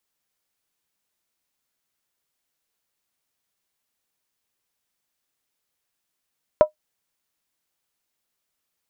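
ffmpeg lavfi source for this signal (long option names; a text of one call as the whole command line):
ffmpeg -f lavfi -i "aevalsrc='0.596*pow(10,-3*t/0.11)*sin(2*PI*613*t)+0.158*pow(10,-3*t/0.087)*sin(2*PI*977.1*t)+0.0422*pow(10,-3*t/0.075)*sin(2*PI*1309.4*t)+0.0112*pow(10,-3*t/0.073)*sin(2*PI*1407.4*t)+0.00299*pow(10,-3*t/0.068)*sin(2*PI*1626.3*t)':duration=0.63:sample_rate=44100" out.wav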